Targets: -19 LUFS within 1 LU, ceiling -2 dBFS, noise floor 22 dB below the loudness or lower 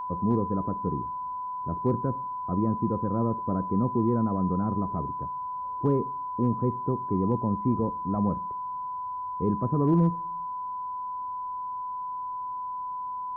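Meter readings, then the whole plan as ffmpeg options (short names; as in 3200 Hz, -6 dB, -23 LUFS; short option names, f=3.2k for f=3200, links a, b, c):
steady tone 1000 Hz; tone level -31 dBFS; loudness -29.0 LUFS; peak -14.0 dBFS; loudness target -19.0 LUFS
-> -af "bandreject=f=1k:w=30"
-af "volume=10dB"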